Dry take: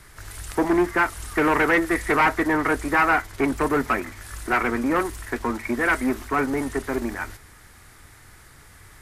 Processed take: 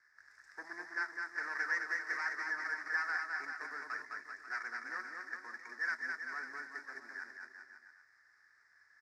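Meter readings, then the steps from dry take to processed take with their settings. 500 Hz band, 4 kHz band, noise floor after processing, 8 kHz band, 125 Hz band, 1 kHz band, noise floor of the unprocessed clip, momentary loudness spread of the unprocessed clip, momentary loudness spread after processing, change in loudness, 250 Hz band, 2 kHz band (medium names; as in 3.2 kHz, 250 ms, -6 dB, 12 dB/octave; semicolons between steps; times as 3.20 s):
-32.5 dB, -15.5 dB, -68 dBFS, -20.5 dB, under -40 dB, -20.5 dB, -49 dBFS, 11 LU, 13 LU, -16.0 dB, -36.5 dB, -11.0 dB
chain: median filter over 9 samples; two resonant band-passes 3 kHz, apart 1.6 oct; bouncing-ball echo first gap 210 ms, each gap 0.85×, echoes 5; trim -8 dB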